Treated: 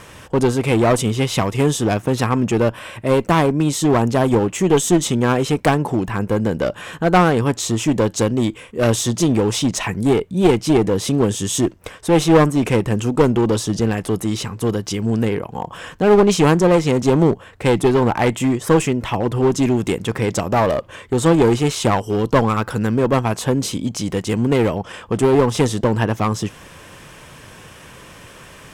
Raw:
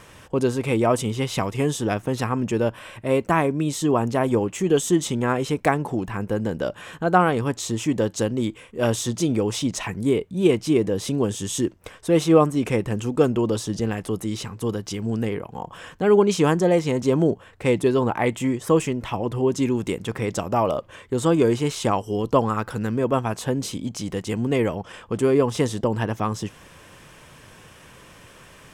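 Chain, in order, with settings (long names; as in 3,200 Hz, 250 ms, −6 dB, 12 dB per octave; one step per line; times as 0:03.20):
asymmetric clip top −21.5 dBFS
level +6.5 dB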